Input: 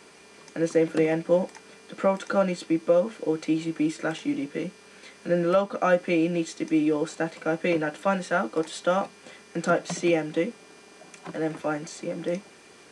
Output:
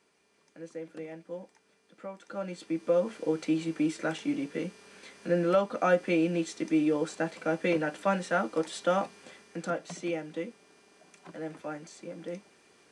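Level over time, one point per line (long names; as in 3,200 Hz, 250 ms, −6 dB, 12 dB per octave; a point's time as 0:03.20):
0:02.17 −18.5 dB
0:02.57 −9.5 dB
0:03.10 −3 dB
0:09.19 −3 dB
0:09.78 −10 dB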